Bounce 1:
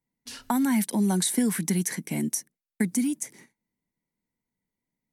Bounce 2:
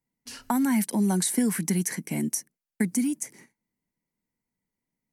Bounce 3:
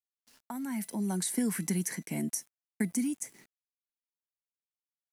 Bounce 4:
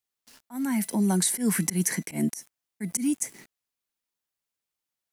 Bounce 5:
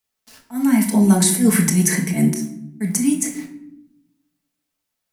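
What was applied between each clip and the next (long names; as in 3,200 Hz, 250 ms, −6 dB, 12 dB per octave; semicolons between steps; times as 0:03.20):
parametric band 3,600 Hz −7.5 dB 0.25 octaves
fade in at the beginning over 1.52 s; tuned comb filter 670 Hz, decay 0.33 s, mix 60%; centre clipping without the shift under −59 dBFS; level +2.5 dB
volume swells 118 ms; level +8.5 dB
convolution reverb RT60 0.75 s, pre-delay 5 ms, DRR −1 dB; level +5.5 dB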